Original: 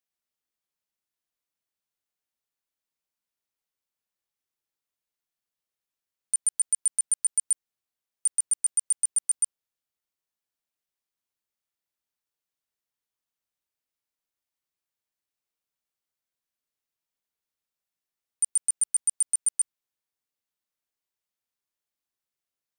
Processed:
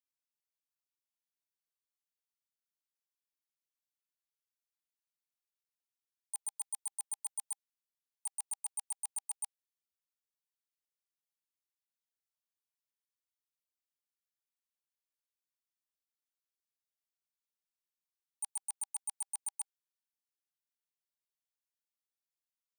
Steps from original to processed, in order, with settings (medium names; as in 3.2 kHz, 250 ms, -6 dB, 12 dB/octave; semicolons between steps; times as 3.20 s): gate -20 dBFS, range -16 dB; Chebyshev high-pass 800 Hz, order 8; treble shelf 2.9 kHz +7 dB; saturation -36 dBFS, distortion -6 dB; trim +2.5 dB